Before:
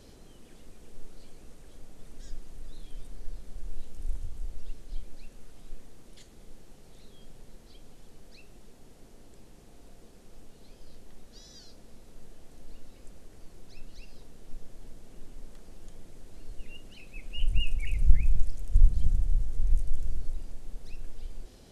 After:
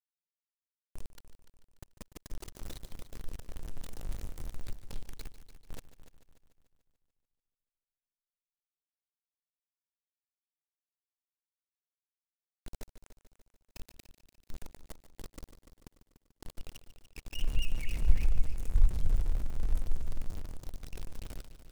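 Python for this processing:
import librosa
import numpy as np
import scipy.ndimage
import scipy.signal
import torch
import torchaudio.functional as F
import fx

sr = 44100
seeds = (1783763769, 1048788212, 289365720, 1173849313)

y = np.where(np.abs(x) >= 10.0 ** (-32.0 / 20.0), x, 0.0)
y = fx.echo_heads(y, sr, ms=146, heads='first and second', feedback_pct=51, wet_db=-14.5)
y = F.gain(torch.from_numpy(y), -5.0).numpy()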